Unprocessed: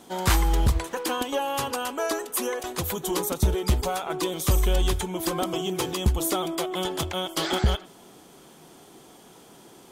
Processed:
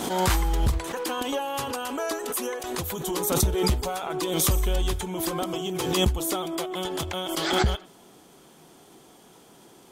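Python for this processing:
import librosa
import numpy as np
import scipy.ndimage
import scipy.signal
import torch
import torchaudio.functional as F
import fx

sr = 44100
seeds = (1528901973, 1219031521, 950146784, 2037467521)

y = fx.pre_swell(x, sr, db_per_s=41.0)
y = y * 10.0 ** (-2.5 / 20.0)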